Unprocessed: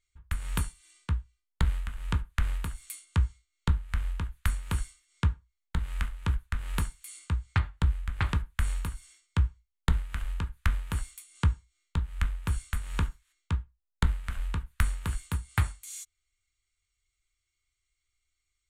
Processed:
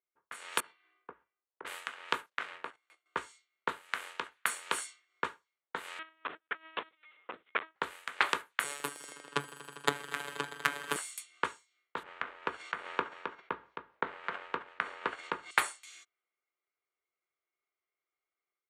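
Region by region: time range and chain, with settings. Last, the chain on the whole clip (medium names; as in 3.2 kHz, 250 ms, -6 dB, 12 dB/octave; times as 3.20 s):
0.60–1.65 s: compression 16:1, threshold -33 dBFS + overload inside the chain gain 32.5 dB + distance through air 400 m
2.26–3.06 s: companding laws mixed up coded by A + bass shelf 77 Hz -8 dB + transient shaper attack -5 dB, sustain -9 dB
5.99–7.76 s: compression 1.5:1, threshold -37 dBFS + LPC vocoder at 8 kHz pitch kept
8.64–10.96 s: bass shelf 490 Hz +12 dB + robot voice 143 Hz + echo with a slow build-up 80 ms, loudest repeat 5, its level -18 dB
12.03–15.51 s: tape spacing loss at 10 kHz 42 dB + delay 265 ms -14 dB + level flattener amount 50%
whole clip: level-controlled noise filter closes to 970 Hz, open at -24 dBFS; Chebyshev high-pass 420 Hz, order 3; level rider gain up to 7 dB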